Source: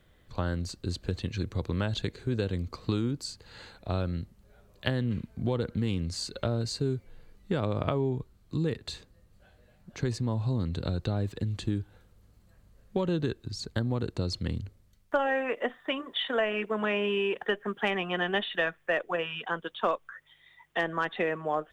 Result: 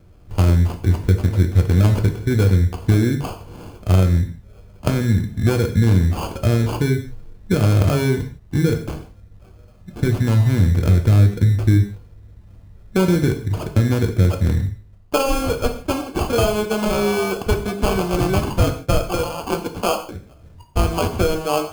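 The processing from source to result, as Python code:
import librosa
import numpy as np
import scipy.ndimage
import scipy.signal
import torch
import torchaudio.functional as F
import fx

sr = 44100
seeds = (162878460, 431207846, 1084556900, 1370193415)

y = fx.sample_hold(x, sr, seeds[0], rate_hz=1900.0, jitter_pct=0)
y = fx.low_shelf(y, sr, hz=310.0, db=9.0)
y = fx.rev_gated(y, sr, seeds[1], gate_ms=190, shape='falling', drr_db=4.0)
y = y * librosa.db_to_amplitude(5.5)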